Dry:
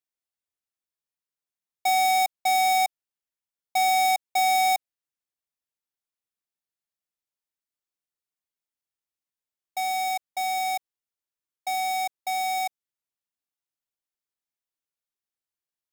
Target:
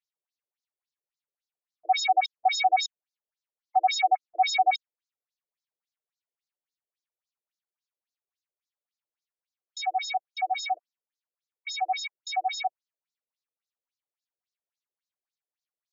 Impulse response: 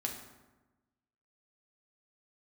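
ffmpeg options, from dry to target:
-af "afftfilt=real='re*between(b*sr/1024,430*pow(5400/430,0.5+0.5*sin(2*PI*3.6*pts/sr))/1.41,430*pow(5400/430,0.5+0.5*sin(2*PI*3.6*pts/sr))*1.41)':imag='im*between(b*sr/1024,430*pow(5400/430,0.5+0.5*sin(2*PI*3.6*pts/sr))/1.41,430*pow(5400/430,0.5+0.5*sin(2*PI*3.6*pts/sr))*1.41)':win_size=1024:overlap=0.75,volume=1.78"

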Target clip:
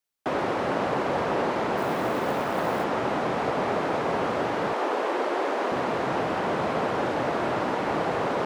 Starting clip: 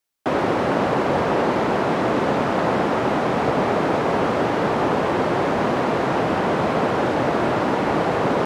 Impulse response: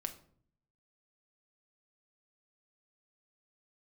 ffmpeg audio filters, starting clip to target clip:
-filter_complex "[0:a]asettb=1/sr,asplit=3[s0][s1][s2];[s0]atrim=end=4.734[s3];[s1]atrim=start=4.73:end=5.72,asetpts=PTS-STARTPTS,afade=t=in:d=0.004:c=qsin,afade=t=out:st=0.986:d=0.004:c=qsin,highpass=f=310:w=0.5412,highpass=f=310:w=1.3066[s4];[s2]atrim=start=5.716[s5];[s3][s4]acrossfade=d=0.004:c1=hsin:c2=qsin[s6];[s6][s5]acrossfade=d=0.004:c1=qsin:c2=hsin,acrossover=split=400[s7][s8];[s7]alimiter=limit=0.0891:level=0:latency=1:release=378[s9];[s9][s8]amix=inputs=2:normalize=0,asettb=1/sr,asplit=3[s10][s11][s12];[s10]atrim=end=1.774[s13];[s11]atrim=start=1.77:end=2.84,asetpts=PTS-STARTPTS,afade=t=in:d=0.004:c=qsin,afade=t=out:st=1.066:d=0.004:c=qsin,acrusher=bits=6:mode=log:mix=0:aa=0.000001[s14];[s12]atrim=start=2.836[s15];[s13][s14]acrossfade=d=0.004:c1=hsin:c2=qsin[s16];[s16][s15]acrossfade=d=0.004:c1=qsin:c2=hsin,volume=0.562"

